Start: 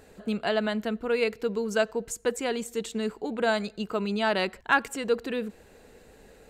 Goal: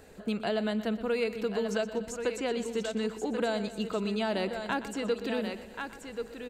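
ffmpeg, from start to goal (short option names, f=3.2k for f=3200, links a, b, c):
-filter_complex "[0:a]asplit=2[a][b];[b]aecho=0:1:1082:0.282[c];[a][c]amix=inputs=2:normalize=0,acrossover=split=690|2800|7100[d][e][f][g];[d]acompressor=threshold=-28dB:ratio=4[h];[e]acompressor=threshold=-39dB:ratio=4[i];[f]acompressor=threshold=-42dB:ratio=4[j];[g]acompressor=threshold=-59dB:ratio=4[k];[h][i][j][k]amix=inputs=4:normalize=0,asplit=2[l][m];[m]aecho=0:1:122|244|366|488|610|732:0.2|0.11|0.0604|0.0332|0.0183|0.01[n];[l][n]amix=inputs=2:normalize=0"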